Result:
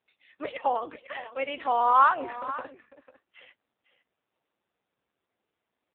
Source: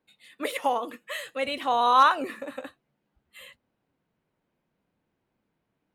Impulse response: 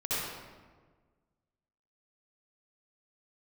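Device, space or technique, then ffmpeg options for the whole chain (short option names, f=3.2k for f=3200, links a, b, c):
satellite phone: -af "highpass=320,lowpass=3.1k,aecho=1:1:499:0.178" -ar 8000 -c:a libopencore_amrnb -b:a 5900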